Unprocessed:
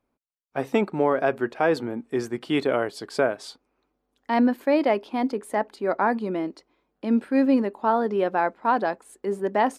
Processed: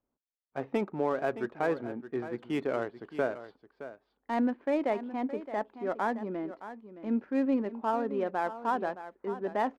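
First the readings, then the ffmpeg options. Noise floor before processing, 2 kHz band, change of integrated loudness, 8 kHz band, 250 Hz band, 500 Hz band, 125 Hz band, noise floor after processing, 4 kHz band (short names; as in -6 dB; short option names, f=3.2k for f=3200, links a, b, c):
-77 dBFS, -9.0 dB, -8.0 dB, under -15 dB, -8.0 dB, -8.0 dB, -7.5 dB, -85 dBFS, -13.0 dB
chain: -af "lowpass=2.7k,adynamicsmooth=sensitivity=6.5:basefreq=2.1k,aecho=1:1:618:0.224,volume=-8dB"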